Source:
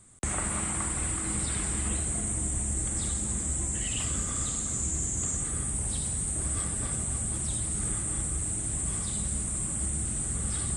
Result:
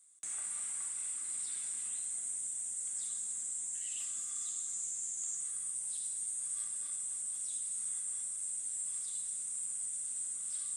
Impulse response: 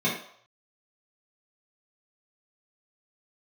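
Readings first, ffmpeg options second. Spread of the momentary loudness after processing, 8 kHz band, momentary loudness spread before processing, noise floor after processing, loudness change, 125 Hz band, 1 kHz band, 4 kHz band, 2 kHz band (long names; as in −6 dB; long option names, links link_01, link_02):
1 LU, −6.0 dB, 1 LU, −41 dBFS, −7.0 dB, below −40 dB, below −20 dB, −12.5 dB, below −15 dB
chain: -filter_complex "[0:a]aderivative,asplit=2[link_01][link_02];[1:a]atrim=start_sample=2205,asetrate=70560,aresample=44100[link_03];[link_02][link_03]afir=irnorm=-1:irlink=0,volume=-13dB[link_04];[link_01][link_04]amix=inputs=2:normalize=0,volume=-6.5dB"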